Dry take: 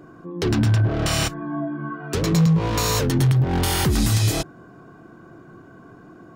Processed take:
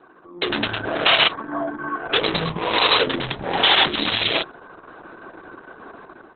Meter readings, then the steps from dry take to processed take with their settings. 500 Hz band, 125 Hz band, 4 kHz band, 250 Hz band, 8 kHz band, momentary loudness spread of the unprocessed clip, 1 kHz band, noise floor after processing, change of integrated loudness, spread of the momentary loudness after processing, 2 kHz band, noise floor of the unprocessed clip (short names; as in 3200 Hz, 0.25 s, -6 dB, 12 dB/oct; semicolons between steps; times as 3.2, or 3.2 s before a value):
+2.5 dB, -16.5 dB, +10.5 dB, -6.5 dB, under -40 dB, 10 LU, +6.5 dB, -48 dBFS, +1.5 dB, 12 LU, +9.5 dB, -46 dBFS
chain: HPF 480 Hz 12 dB/oct; dynamic EQ 3300 Hz, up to +6 dB, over -42 dBFS, Q 1.5; AGC gain up to 11 dB; Opus 6 kbps 48000 Hz